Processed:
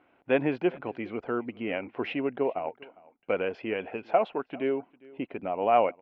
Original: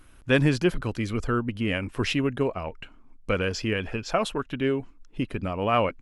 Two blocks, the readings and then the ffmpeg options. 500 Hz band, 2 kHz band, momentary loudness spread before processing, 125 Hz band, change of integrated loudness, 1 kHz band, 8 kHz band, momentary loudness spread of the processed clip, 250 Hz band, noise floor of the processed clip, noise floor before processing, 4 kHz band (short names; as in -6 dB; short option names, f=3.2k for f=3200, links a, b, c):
0.0 dB, -6.0 dB, 10 LU, -16.0 dB, -3.0 dB, +1.0 dB, under -35 dB, 12 LU, -5.5 dB, -68 dBFS, -52 dBFS, -11.5 dB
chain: -filter_complex "[0:a]highpass=340,equalizer=f=740:t=q:w=4:g=7,equalizer=f=1.2k:t=q:w=4:g=-8,equalizer=f=1.7k:t=q:w=4:g=-8,lowpass=f=2.3k:w=0.5412,lowpass=f=2.3k:w=1.3066,asplit=2[a][b];[b]aecho=0:1:404:0.0708[c];[a][c]amix=inputs=2:normalize=0"